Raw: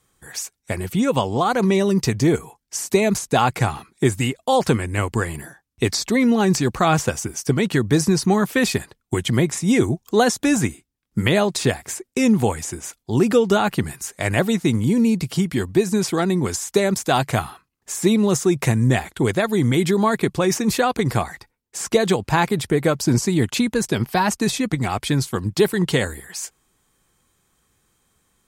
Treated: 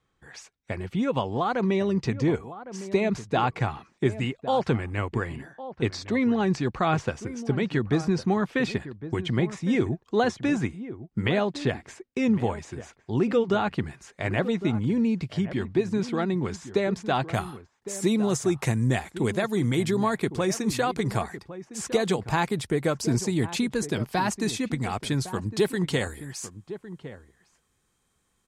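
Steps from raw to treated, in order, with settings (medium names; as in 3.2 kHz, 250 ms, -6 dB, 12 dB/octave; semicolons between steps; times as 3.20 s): low-pass 3.6 kHz 12 dB/octave, from 17.34 s 11 kHz; echo from a far wall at 190 m, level -13 dB; trim -6.5 dB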